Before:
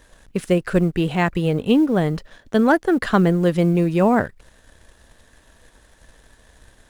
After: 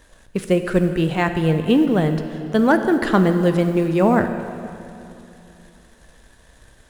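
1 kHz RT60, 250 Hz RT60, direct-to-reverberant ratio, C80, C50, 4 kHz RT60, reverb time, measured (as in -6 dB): 2.7 s, 3.1 s, 7.5 dB, 9.5 dB, 8.5 dB, 2.5 s, 2.8 s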